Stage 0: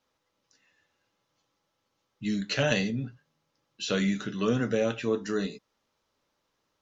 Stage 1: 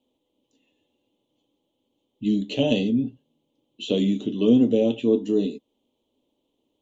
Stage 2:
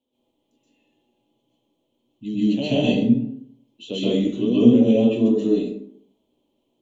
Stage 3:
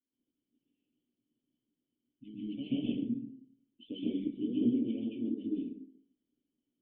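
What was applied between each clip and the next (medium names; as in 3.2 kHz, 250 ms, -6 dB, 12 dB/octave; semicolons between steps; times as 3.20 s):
FFT filter 180 Hz 0 dB, 250 Hz +14 dB, 950 Hz -3 dB, 1.5 kHz -28 dB, 3.2 kHz +7 dB, 5.1 kHz -17 dB, 7.2 kHz -3 dB
plate-style reverb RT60 0.64 s, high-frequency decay 0.55×, pre-delay 115 ms, DRR -10 dB; trim -7 dB
harmonic-percussive split harmonic -17 dB; cascade formant filter i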